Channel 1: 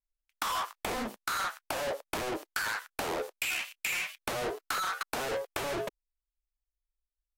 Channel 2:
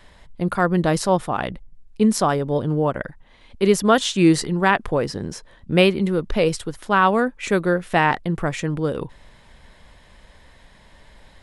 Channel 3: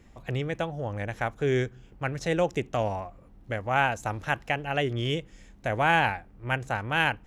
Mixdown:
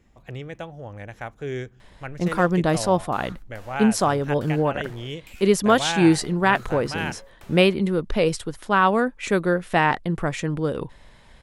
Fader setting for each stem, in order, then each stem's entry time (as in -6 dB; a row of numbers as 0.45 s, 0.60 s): -16.0 dB, -1.5 dB, -5.0 dB; 1.85 s, 1.80 s, 0.00 s